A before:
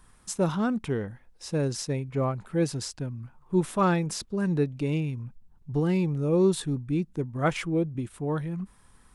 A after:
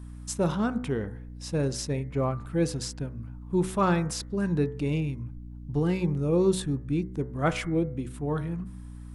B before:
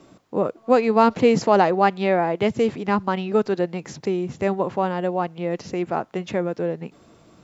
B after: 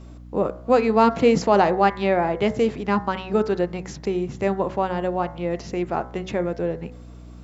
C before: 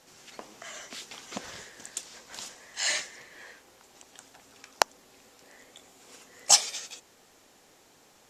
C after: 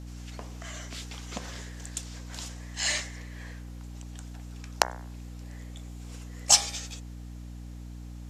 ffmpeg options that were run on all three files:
ffmpeg -i in.wav -af "bandreject=frequency=62.28:width_type=h:width=4,bandreject=frequency=124.56:width_type=h:width=4,bandreject=frequency=186.84:width_type=h:width=4,bandreject=frequency=249.12:width_type=h:width=4,bandreject=frequency=311.4:width_type=h:width=4,bandreject=frequency=373.68:width_type=h:width=4,bandreject=frequency=435.96:width_type=h:width=4,bandreject=frequency=498.24:width_type=h:width=4,bandreject=frequency=560.52:width_type=h:width=4,bandreject=frequency=622.8:width_type=h:width=4,bandreject=frequency=685.08:width_type=h:width=4,bandreject=frequency=747.36:width_type=h:width=4,bandreject=frequency=809.64:width_type=h:width=4,bandreject=frequency=871.92:width_type=h:width=4,bandreject=frequency=934.2:width_type=h:width=4,bandreject=frequency=996.48:width_type=h:width=4,bandreject=frequency=1058.76:width_type=h:width=4,bandreject=frequency=1121.04:width_type=h:width=4,bandreject=frequency=1183.32:width_type=h:width=4,bandreject=frequency=1245.6:width_type=h:width=4,bandreject=frequency=1307.88:width_type=h:width=4,bandreject=frequency=1370.16:width_type=h:width=4,bandreject=frequency=1432.44:width_type=h:width=4,bandreject=frequency=1494.72:width_type=h:width=4,bandreject=frequency=1557:width_type=h:width=4,bandreject=frequency=1619.28:width_type=h:width=4,bandreject=frequency=1681.56:width_type=h:width=4,bandreject=frequency=1743.84:width_type=h:width=4,bandreject=frequency=1806.12:width_type=h:width=4,bandreject=frequency=1868.4:width_type=h:width=4,bandreject=frequency=1930.68:width_type=h:width=4,bandreject=frequency=1992.96:width_type=h:width=4,bandreject=frequency=2055.24:width_type=h:width=4,bandreject=frequency=2117.52:width_type=h:width=4,bandreject=frequency=2179.8:width_type=h:width=4,aeval=exprs='val(0)+0.01*(sin(2*PI*60*n/s)+sin(2*PI*2*60*n/s)/2+sin(2*PI*3*60*n/s)/3+sin(2*PI*4*60*n/s)/4+sin(2*PI*5*60*n/s)/5)':channel_layout=same" out.wav

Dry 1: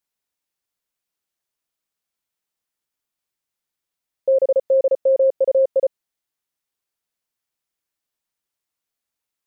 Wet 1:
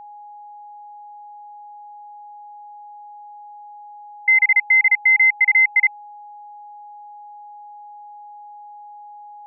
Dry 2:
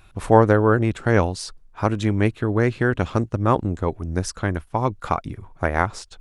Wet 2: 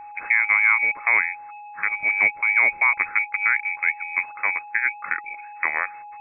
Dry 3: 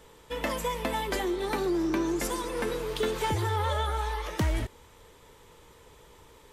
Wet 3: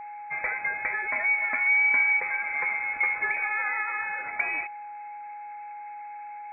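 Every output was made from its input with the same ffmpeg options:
ffmpeg -i in.wav -af "lowshelf=frequency=240:width_type=q:width=3:gain=-8,alimiter=limit=-8dB:level=0:latency=1:release=387,lowpass=frequency=2200:width_type=q:width=0.5098,lowpass=frequency=2200:width_type=q:width=0.6013,lowpass=frequency=2200:width_type=q:width=0.9,lowpass=frequency=2200:width_type=q:width=2.563,afreqshift=-2600,aeval=exprs='val(0)+0.0141*sin(2*PI*830*n/s)':channel_layout=same" out.wav

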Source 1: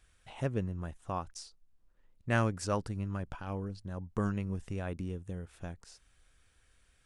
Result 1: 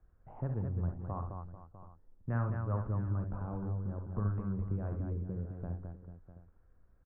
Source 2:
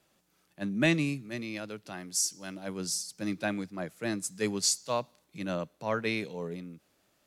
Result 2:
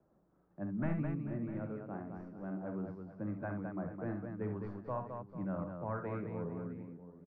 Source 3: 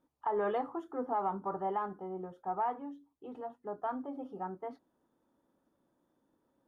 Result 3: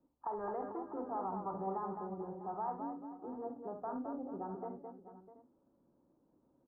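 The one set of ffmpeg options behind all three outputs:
ffmpeg -i in.wav -filter_complex "[0:a]asplit=2[link_01][link_02];[link_02]acrusher=bits=5:mode=log:mix=0:aa=0.000001,volume=-5.5dB[link_03];[link_01][link_03]amix=inputs=2:normalize=0,aeval=exprs='clip(val(0),-1,0.119)':channel_layout=same,acrossover=split=130|950[link_04][link_05][link_06];[link_05]acompressor=threshold=-39dB:ratio=6[link_07];[link_04][link_07][link_06]amix=inputs=3:normalize=0,lowpass=frequency=1400:width=0.5412,lowpass=frequency=1400:width=1.3066,tiltshelf=frequency=1100:gain=7,aecho=1:1:47|68|212|443|650|730:0.316|0.376|0.531|0.188|0.178|0.112,volume=-8dB" out.wav

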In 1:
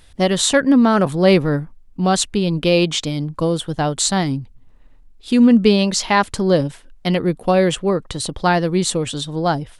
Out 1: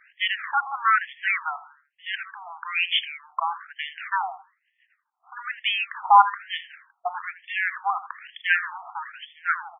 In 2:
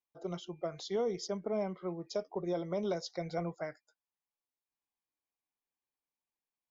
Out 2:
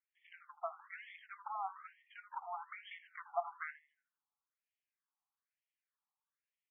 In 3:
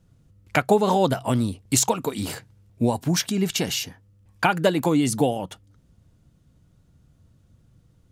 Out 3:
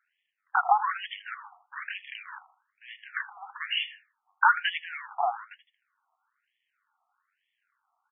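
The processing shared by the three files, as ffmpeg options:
ffmpeg -i in.wav -filter_complex "[0:a]aeval=exprs='if(lt(val(0),0),0.447*val(0),val(0))':channel_layout=same,lowpass=4300,asplit=2[link_01][link_02];[link_02]adelay=80,lowpass=frequency=2900:poles=1,volume=-13.5dB,asplit=2[link_03][link_04];[link_04]adelay=80,lowpass=frequency=2900:poles=1,volume=0.37,asplit=2[link_05][link_06];[link_06]adelay=80,lowpass=frequency=2900:poles=1,volume=0.37,asplit=2[link_07][link_08];[link_08]adelay=80,lowpass=frequency=2900:poles=1,volume=0.37[link_09];[link_03][link_05][link_07][link_09]amix=inputs=4:normalize=0[link_10];[link_01][link_10]amix=inputs=2:normalize=0,afftfilt=real='re*between(b*sr/1024,960*pow(2500/960,0.5+0.5*sin(2*PI*1.1*pts/sr))/1.41,960*pow(2500/960,0.5+0.5*sin(2*PI*1.1*pts/sr))*1.41)':imag='im*between(b*sr/1024,960*pow(2500/960,0.5+0.5*sin(2*PI*1.1*pts/sr))/1.41,960*pow(2500/960,0.5+0.5*sin(2*PI*1.1*pts/sr))*1.41)':win_size=1024:overlap=0.75,volume=7dB" out.wav

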